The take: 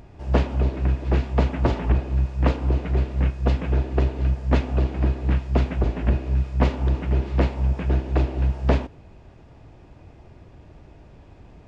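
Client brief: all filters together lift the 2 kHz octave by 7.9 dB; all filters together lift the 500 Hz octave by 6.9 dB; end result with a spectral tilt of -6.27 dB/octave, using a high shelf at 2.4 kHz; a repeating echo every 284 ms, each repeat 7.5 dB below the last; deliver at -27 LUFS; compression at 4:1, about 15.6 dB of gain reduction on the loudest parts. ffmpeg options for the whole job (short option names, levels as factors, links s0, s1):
-af "equalizer=f=500:t=o:g=8,equalizer=f=2000:t=o:g=5,highshelf=f=2400:g=9,acompressor=threshold=0.0282:ratio=4,aecho=1:1:284|568|852|1136|1420:0.422|0.177|0.0744|0.0312|0.0131,volume=2.51"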